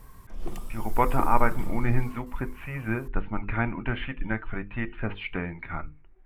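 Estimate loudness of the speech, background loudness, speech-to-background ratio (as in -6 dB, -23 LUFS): -30.5 LUFS, -41.0 LUFS, 10.5 dB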